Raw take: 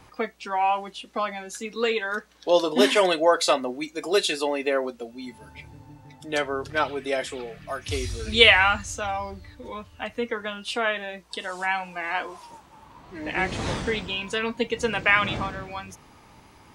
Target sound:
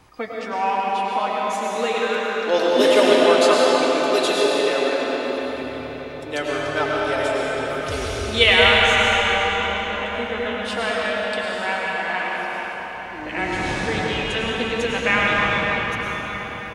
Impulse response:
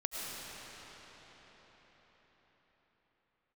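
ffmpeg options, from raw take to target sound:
-filter_complex "[0:a]asplit=2[a][b];[b]adelay=100,highpass=300,lowpass=3.4k,asoftclip=type=hard:threshold=-11.5dB,volume=-15dB[c];[a][c]amix=inputs=2:normalize=0[d];[1:a]atrim=start_sample=2205[e];[d][e]afir=irnorm=-1:irlink=0,volume=1dB"

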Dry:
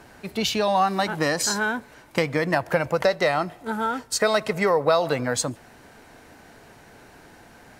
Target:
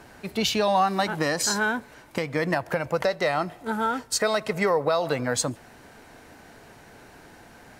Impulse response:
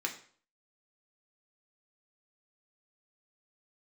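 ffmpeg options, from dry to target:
-af "alimiter=limit=-12dB:level=0:latency=1:release=341"

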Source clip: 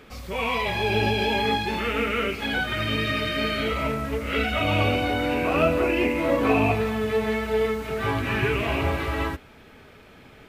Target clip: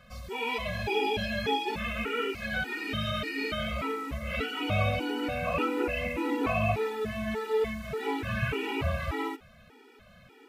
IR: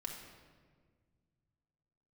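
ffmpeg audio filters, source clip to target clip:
-af "afftfilt=real='re*gt(sin(2*PI*1.7*pts/sr)*(1-2*mod(floor(b*sr/1024/250),2)),0)':imag='im*gt(sin(2*PI*1.7*pts/sr)*(1-2*mod(floor(b*sr/1024/250),2)),0)':win_size=1024:overlap=0.75,volume=-3dB"

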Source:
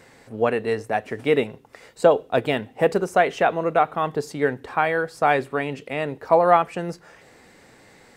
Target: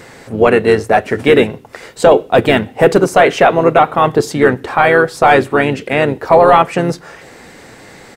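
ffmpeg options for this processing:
-filter_complex "[0:a]asplit=2[a][b];[b]asetrate=35002,aresample=44100,atempo=1.25992,volume=-9dB[c];[a][c]amix=inputs=2:normalize=0,apsyclip=14.5dB,volume=-1.5dB"

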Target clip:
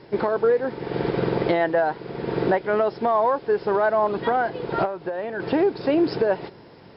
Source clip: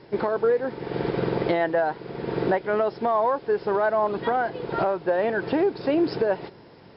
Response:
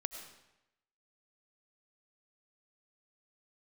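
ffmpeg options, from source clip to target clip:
-filter_complex "[0:a]asettb=1/sr,asplit=3[a][b][c];[a]atrim=end=4.854[d];[b]atrim=start=4.85:end=5.4,asetpts=PTS-STARTPTS,afade=t=in:d=0.004:c=qsin,afade=t=out:st=0.546:d=0.004:c=qsin,acompressor=threshold=-28dB:ratio=6[e];[c]atrim=start=5.396[f];[d][e]acrossfade=d=0.004:c1=hsin:c2=qsin[g];[g][f]acrossfade=d=0.004:c1=qsin:c2=hsin,volume=2dB"

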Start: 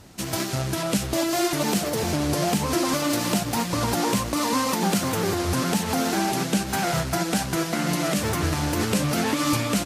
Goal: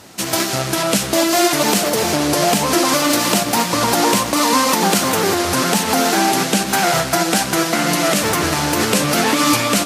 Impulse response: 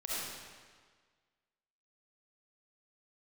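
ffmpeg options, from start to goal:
-filter_complex "[0:a]highpass=f=370:p=1,acontrast=22,asplit=2[a][b];[1:a]atrim=start_sample=2205[c];[b][c]afir=irnorm=-1:irlink=0,volume=-15.5dB[d];[a][d]amix=inputs=2:normalize=0,volume=4.5dB"

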